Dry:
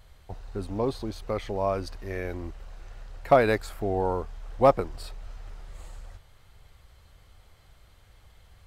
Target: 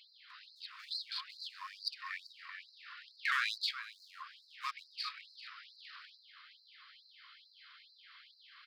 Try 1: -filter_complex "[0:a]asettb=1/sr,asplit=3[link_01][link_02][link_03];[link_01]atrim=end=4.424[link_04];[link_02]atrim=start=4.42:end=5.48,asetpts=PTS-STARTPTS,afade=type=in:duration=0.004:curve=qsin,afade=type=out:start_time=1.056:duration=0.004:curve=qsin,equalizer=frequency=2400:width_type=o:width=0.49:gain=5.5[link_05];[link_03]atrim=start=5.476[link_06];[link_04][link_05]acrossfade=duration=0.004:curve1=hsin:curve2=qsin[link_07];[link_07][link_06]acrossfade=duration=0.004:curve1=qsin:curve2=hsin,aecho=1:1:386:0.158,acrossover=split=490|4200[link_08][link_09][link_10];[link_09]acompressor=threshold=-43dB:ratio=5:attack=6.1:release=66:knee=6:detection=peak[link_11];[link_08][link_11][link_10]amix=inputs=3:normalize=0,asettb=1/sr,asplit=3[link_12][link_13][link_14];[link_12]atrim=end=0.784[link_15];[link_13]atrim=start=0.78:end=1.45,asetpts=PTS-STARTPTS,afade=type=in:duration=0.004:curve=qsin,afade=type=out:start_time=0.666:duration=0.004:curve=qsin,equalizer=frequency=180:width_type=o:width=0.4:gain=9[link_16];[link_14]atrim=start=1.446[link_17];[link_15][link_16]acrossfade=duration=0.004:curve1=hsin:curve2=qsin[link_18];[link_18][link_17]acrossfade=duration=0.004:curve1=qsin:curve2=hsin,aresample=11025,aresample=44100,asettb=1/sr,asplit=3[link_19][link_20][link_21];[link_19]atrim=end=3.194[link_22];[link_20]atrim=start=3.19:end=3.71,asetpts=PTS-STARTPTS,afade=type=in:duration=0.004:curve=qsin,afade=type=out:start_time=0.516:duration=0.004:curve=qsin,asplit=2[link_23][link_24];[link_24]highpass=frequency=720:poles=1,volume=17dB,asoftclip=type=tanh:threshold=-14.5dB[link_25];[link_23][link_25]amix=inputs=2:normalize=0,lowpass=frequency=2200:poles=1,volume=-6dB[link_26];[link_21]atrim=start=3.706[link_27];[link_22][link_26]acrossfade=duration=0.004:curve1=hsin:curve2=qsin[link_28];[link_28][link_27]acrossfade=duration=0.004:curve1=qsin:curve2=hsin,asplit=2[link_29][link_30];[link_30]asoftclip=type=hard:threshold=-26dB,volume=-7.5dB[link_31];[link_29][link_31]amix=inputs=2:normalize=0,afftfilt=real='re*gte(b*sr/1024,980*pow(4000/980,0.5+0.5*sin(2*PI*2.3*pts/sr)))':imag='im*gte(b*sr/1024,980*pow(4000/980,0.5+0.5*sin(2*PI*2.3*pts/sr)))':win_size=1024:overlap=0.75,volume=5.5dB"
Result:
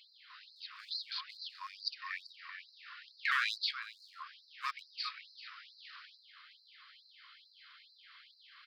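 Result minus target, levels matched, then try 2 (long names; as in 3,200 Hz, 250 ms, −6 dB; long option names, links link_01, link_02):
hard clipping: distortion −7 dB
-filter_complex "[0:a]asettb=1/sr,asplit=3[link_01][link_02][link_03];[link_01]atrim=end=4.424[link_04];[link_02]atrim=start=4.42:end=5.48,asetpts=PTS-STARTPTS,afade=type=in:duration=0.004:curve=qsin,afade=type=out:start_time=1.056:duration=0.004:curve=qsin,equalizer=frequency=2400:width_type=o:width=0.49:gain=5.5[link_05];[link_03]atrim=start=5.476[link_06];[link_04][link_05]acrossfade=duration=0.004:curve1=hsin:curve2=qsin[link_07];[link_07][link_06]acrossfade=duration=0.004:curve1=qsin:curve2=hsin,aecho=1:1:386:0.158,acrossover=split=490|4200[link_08][link_09][link_10];[link_09]acompressor=threshold=-43dB:ratio=5:attack=6.1:release=66:knee=6:detection=peak[link_11];[link_08][link_11][link_10]amix=inputs=3:normalize=0,asettb=1/sr,asplit=3[link_12][link_13][link_14];[link_12]atrim=end=0.784[link_15];[link_13]atrim=start=0.78:end=1.45,asetpts=PTS-STARTPTS,afade=type=in:duration=0.004:curve=qsin,afade=type=out:start_time=0.666:duration=0.004:curve=qsin,equalizer=frequency=180:width_type=o:width=0.4:gain=9[link_16];[link_14]atrim=start=1.446[link_17];[link_15][link_16]acrossfade=duration=0.004:curve1=hsin:curve2=qsin[link_18];[link_18][link_17]acrossfade=duration=0.004:curve1=qsin:curve2=hsin,aresample=11025,aresample=44100,asettb=1/sr,asplit=3[link_19][link_20][link_21];[link_19]atrim=end=3.194[link_22];[link_20]atrim=start=3.19:end=3.71,asetpts=PTS-STARTPTS,afade=type=in:duration=0.004:curve=qsin,afade=type=out:start_time=0.516:duration=0.004:curve=qsin,asplit=2[link_23][link_24];[link_24]highpass=frequency=720:poles=1,volume=17dB,asoftclip=type=tanh:threshold=-14.5dB[link_25];[link_23][link_25]amix=inputs=2:normalize=0,lowpass=frequency=2200:poles=1,volume=-6dB[link_26];[link_21]atrim=start=3.706[link_27];[link_22][link_26]acrossfade=duration=0.004:curve1=hsin:curve2=qsin[link_28];[link_28][link_27]acrossfade=duration=0.004:curve1=qsin:curve2=hsin,asplit=2[link_29][link_30];[link_30]asoftclip=type=hard:threshold=-36dB,volume=-7.5dB[link_31];[link_29][link_31]amix=inputs=2:normalize=0,afftfilt=real='re*gte(b*sr/1024,980*pow(4000/980,0.5+0.5*sin(2*PI*2.3*pts/sr)))':imag='im*gte(b*sr/1024,980*pow(4000/980,0.5+0.5*sin(2*PI*2.3*pts/sr)))':win_size=1024:overlap=0.75,volume=5.5dB"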